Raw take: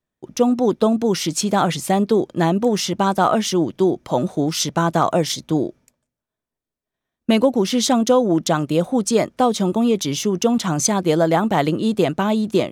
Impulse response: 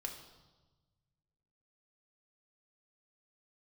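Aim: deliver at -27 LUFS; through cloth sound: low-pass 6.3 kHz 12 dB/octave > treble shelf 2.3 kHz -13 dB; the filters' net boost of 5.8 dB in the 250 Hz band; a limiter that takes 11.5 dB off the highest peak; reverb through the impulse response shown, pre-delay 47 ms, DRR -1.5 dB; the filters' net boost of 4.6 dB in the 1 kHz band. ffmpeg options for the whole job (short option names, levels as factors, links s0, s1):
-filter_complex "[0:a]equalizer=f=250:t=o:g=7,equalizer=f=1000:t=o:g=8,alimiter=limit=0.316:level=0:latency=1,asplit=2[s0][s1];[1:a]atrim=start_sample=2205,adelay=47[s2];[s1][s2]afir=irnorm=-1:irlink=0,volume=1.41[s3];[s0][s3]amix=inputs=2:normalize=0,lowpass=6300,highshelf=f=2300:g=-13,volume=0.282"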